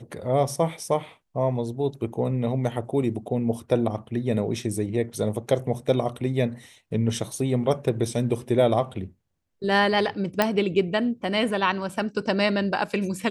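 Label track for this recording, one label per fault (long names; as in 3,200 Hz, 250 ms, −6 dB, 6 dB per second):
10.420000	10.420000	click −6 dBFS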